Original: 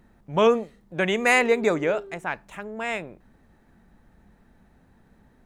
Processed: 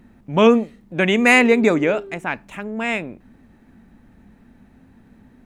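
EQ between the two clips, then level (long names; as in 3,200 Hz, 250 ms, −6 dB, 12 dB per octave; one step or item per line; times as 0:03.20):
graphic EQ with 15 bands 100 Hz +5 dB, 250 Hz +10 dB, 2,500 Hz +5 dB
+3.0 dB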